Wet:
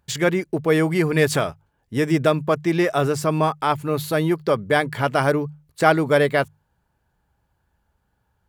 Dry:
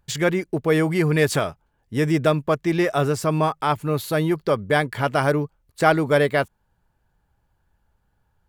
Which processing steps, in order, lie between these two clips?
HPF 43 Hz; notches 50/100/150 Hz; gain +1 dB

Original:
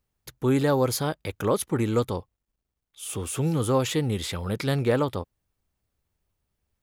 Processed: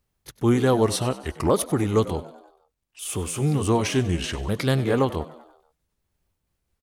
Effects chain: repeated pitch sweeps -4.5 st, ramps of 1.495 s; frequency-shifting echo 96 ms, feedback 54%, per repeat +78 Hz, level -17 dB; gain +3.5 dB

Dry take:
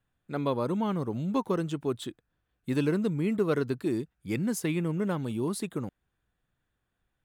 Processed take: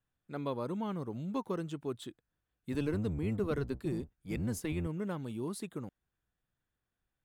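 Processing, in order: 2.72–4.87 octaver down 1 oct, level -1 dB; gain -7.5 dB

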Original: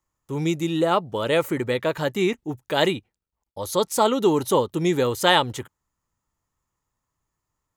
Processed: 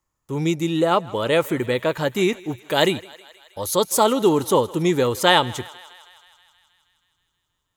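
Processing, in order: 2.15–4.04 high shelf 6900 Hz +7 dB; thinning echo 0.159 s, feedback 71%, high-pass 520 Hz, level -20 dB; gain +2 dB

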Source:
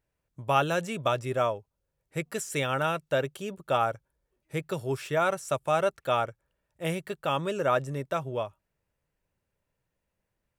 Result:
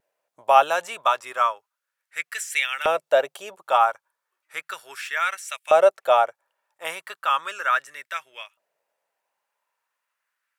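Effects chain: LFO high-pass saw up 0.35 Hz 560–2300 Hz; vibrato 1.3 Hz 28 cents; gain +4 dB

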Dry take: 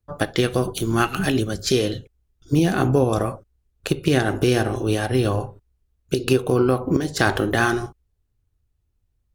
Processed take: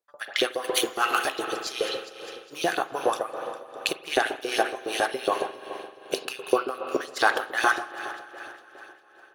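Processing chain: multi-head echo 0.202 s, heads first and second, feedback 50%, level -20 dB; 0.64–1.45 sample leveller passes 2; LFO high-pass saw up 7.2 Hz 410–4300 Hz; AGC gain up to 7 dB; spring tank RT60 3.4 s, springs 43 ms, chirp 40 ms, DRR 8.5 dB; tremolo 2.6 Hz, depth 70%; gain -3.5 dB

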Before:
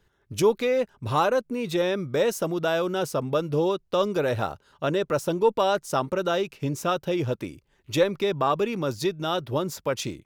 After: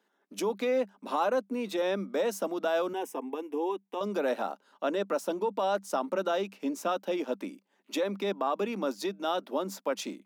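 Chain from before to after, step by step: limiter -17 dBFS, peak gain reduction 7.5 dB; rippled Chebyshev high-pass 190 Hz, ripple 6 dB; 2.93–4.01 fixed phaser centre 890 Hz, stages 8

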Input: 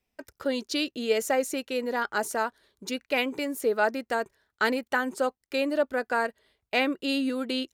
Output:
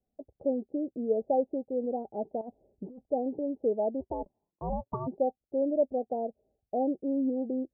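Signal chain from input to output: rippled Chebyshev low-pass 800 Hz, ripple 3 dB; 2.41–3.1 negative-ratio compressor -43 dBFS, ratio -1; 4–5.06 ring modulator 150 Hz -> 410 Hz

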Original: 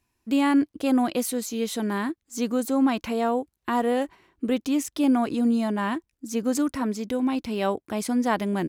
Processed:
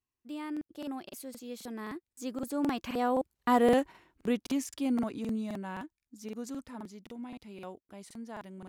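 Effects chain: Doppler pass-by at 3.67, 23 m/s, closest 10 m; crackling interface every 0.26 s, samples 2048, repeat, from 0.52

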